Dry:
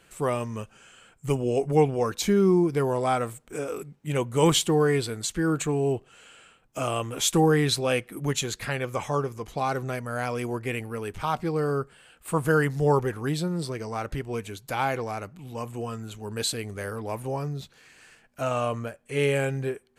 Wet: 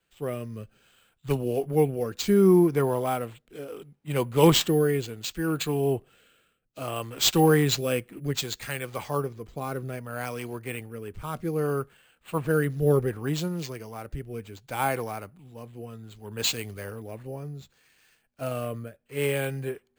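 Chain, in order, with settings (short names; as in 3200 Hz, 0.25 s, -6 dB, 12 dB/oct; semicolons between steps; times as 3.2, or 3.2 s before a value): rotary speaker horn 0.65 Hz; careless resampling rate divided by 4×, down none, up hold; three-band expander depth 40%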